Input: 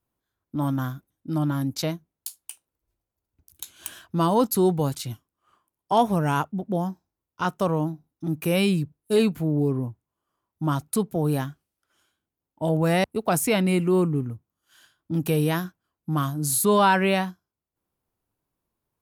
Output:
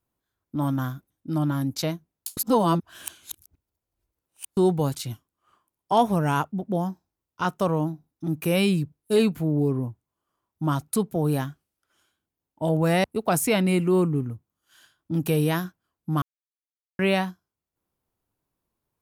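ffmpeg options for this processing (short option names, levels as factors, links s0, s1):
-filter_complex "[0:a]asplit=5[s0][s1][s2][s3][s4];[s0]atrim=end=2.372[s5];[s1]atrim=start=2.368:end=4.572,asetpts=PTS-STARTPTS,areverse[s6];[s2]atrim=start=4.568:end=16.22,asetpts=PTS-STARTPTS,afade=t=out:st=11.648:d=0.004:c=hsin[s7];[s3]atrim=start=16.22:end=16.99,asetpts=PTS-STARTPTS,volume=0[s8];[s4]atrim=start=16.99,asetpts=PTS-STARTPTS,afade=t=in:d=0.004:c=hsin[s9];[s5][s6]acrossfade=d=0.004:c1=hsin:c2=hsin[s10];[s7][s8][s9]concat=n=3:v=0:a=1[s11];[s10][s11]acrossfade=d=0.004:c1=hsin:c2=hsin"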